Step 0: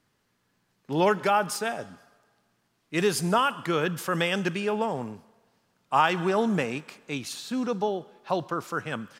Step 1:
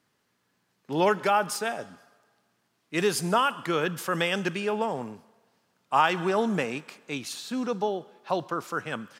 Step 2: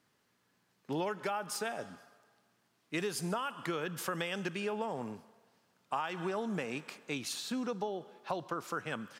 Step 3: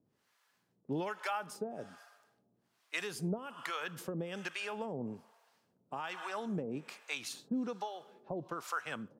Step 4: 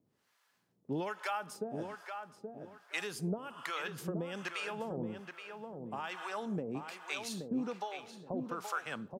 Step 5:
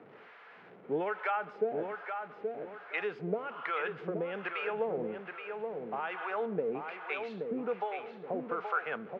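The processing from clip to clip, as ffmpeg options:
-af "highpass=f=160:p=1"
-af "acompressor=threshold=-31dB:ratio=6,volume=-1.5dB"
-filter_complex "[0:a]acrossover=split=610[a][b];[a]aeval=exprs='val(0)*(1-1/2+1/2*cos(2*PI*1.2*n/s))':c=same[c];[b]aeval=exprs='val(0)*(1-1/2-1/2*cos(2*PI*1.2*n/s))':c=same[d];[c][d]amix=inputs=2:normalize=0,volume=2.5dB"
-filter_complex "[0:a]asplit=2[a][b];[b]adelay=825,lowpass=f=2.4k:p=1,volume=-6dB,asplit=2[c][d];[d]adelay=825,lowpass=f=2.4k:p=1,volume=0.29,asplit=2[e][f];[f]adelay=825,lowpass=f=2.4k:p=1,volume=0.29,asplit=2[g][h];[h]adelay=825,lowpass=f=2.4k:p=1,volume=0.29[i];[a][c][e][g][i]amix=inputs=5:normalize=0"
-af "aeval=exprs='val(0)+0.5*0.00355*sgn(val(0))':c=same,highpass=200,equalizer=f=270:t=q:w=4:g=-4,equalizer=f=450:t=q:w=4:g=10,equalizer=f=730:t=q:w=4:g=5,equalizer=f=1.4k:t=q:w=4:g=5,equalizer=f=2.2k:t=q:w=4:g=4,lowpass=f=2.7k:w=0.5412,lowpass=f=2.7k:w=1.3066"

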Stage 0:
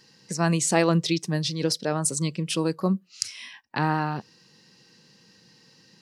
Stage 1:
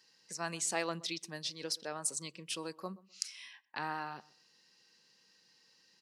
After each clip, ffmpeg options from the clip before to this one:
-filter_complex "[0:a]highpass=f=920:p=1,asplit=2[a][b];[b]adelay=126,lowpass=f=1.2k:p=1,volume=-20dB,asplit=2[c][d];[d]adelay=126,lowpass=f=1.2k:p=1,volume=0.24[e];[a][c][e]amix=inputs=3:normalize=0,volume=-9dB"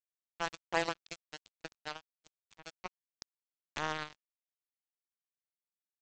-filter_complex "[0:a]acrossover=split=3600[a][b];[b]acompressor=threshold=-52dB:ratio=4:attack=1:release=60[c];[a][c]amix=inputs=2:normalize=0,aresample=16000,acrusher=bits=4:mix=0:aa=0.5,aresample=44100,aphaser=in_gain=1:out_gain=1:delay=1.5:decay=0.2:speed=1.3:type=triangular,volume=2.5dB"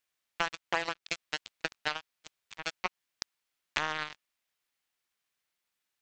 -af "equalizer=f=2.2k:w=0.48:g=8,acompressor=threshold=-35dB:ratio=12,volume=8.5dB"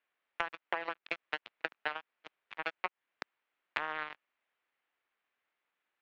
-filter_complex "[0:a]lowpass=4.2k,acrossover=split=260 2900:gain=0.2 1 0.0708[a][b][c];[a][b][c]amix=inputs=3:normalize=0,acompressor=threshold=-36dB:ratio=10,volume=5.5dB"

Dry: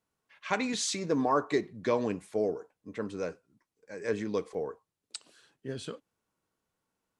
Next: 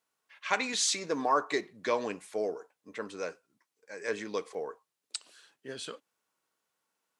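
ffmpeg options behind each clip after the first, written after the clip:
-af "highpass=f=880:p=1,volume=4dB"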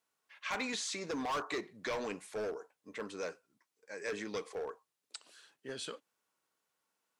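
-filter_complex "[0:a]acrossover=split=1900[a][b];[a]volume=33dB,asoftclip=hard,volume=-33dB[c];[b]alimiter=level_in=4.5dB:limit=-24dB:level=0:latency=1:release=177,volume=-4.5dB[d];[c][d]amix=inputs=2:normalize=0,volume=-1.5dB"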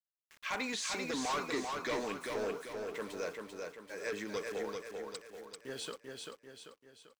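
-filter_complex "[0:a]aeval=exprs='val(0)*gte(abs(val(0)),0.00237)':c=same,asplit=2[a][b];[b]aecho=0:1:391|782|1173|1564|1955|2346:0.631|0.297|0.139|0.0655|0.0308|0.0145[c];[a][c]amix=inputs=2:normalize=0"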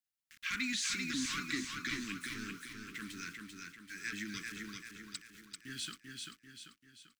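-af "asuperstop=centerf=640:order=8:qfactor=0.58,volume=2.5dB"

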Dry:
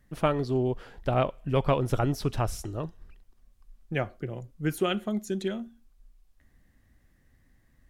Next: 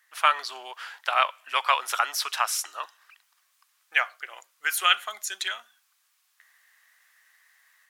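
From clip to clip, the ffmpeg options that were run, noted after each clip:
-af "highpass=f=1.1k:w=0.5412,highpass=f=1.1k:w=1.3066,dynaudnorm=f=140:g=3:m=5dB,volume=8dB"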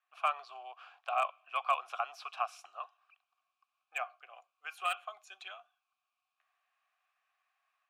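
-filter_complex "[0:a]asplit=3[a][b][c];[a]bandpass=f=730:t=q:w=8,volume=0dB[d];[b]bandpass=f=1.09k:t=q:w=8,volume=-6dB[e];[c]bandpass=f=2.44k:t=q:w=8,volume=-9dB[f];[d][e][f]amix=inputs=3:normalize=0,acrossover=split=790|2400[g][h][i];[i]aeval=exprs='0.0158*(abs(mod(val(0)/0.0158+3,4)-2)-1)':c=same[j];[g][h][j]amix=inputs=3:normalize=0"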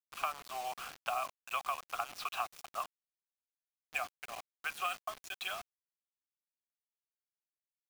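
-af "acompressor=threshold=-42dB:ratio=8,acrusher=bits=8:mix=0:aa=0.000001,volume=8.5dB"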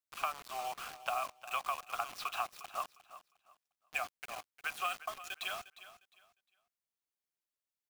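-af "aecho=1:1:355|710|1065:0.178|0.0445|0.0111"

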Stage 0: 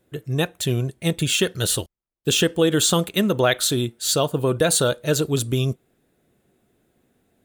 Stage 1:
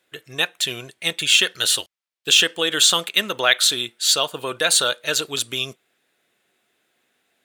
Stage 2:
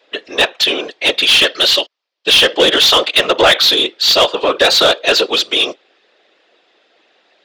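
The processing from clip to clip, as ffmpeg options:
-af "highpass=f=820:p=1,equalizer=f=2.8k:t=o:w=2.9:g=11,volume=-2.5dB"
-filter_complex "[0:a]highpass=f=220:w=0.5412,highpass=f=220:w=1.3066,equalizer=f=230:t=q:w=4:g=-8,equalizer=f=350:t=q:w=4:g=6,equalizer=f=550:t=q:w=4:g=7,equalizer=f=1.5k:t=q:w=4:g=-6,equalizer=f=2.2k:t=q:w=4:g=-5,equalizer=f=4.9k:t=q:w=4:g=4,lowpass=f=5.3k:w=0.5412,lowpass=f=5.3k:w=1.3066,afftfilt=real='hypot(re,im)*cos(2*PI*random(0))':imag='hypot(re,im)*sin(2*PI*random(1))':win_size=512:overlap=0.75,asplit=2[a][b];[b]highpass=f=720:p=1,volume=21dB,asoftclip=type=tanh:threshold=-8dB[c];[a][c]amix=inputs=2:normalize=0,lowpass=f=3.5k:p=1,volume=-6dB,volume=8dB"

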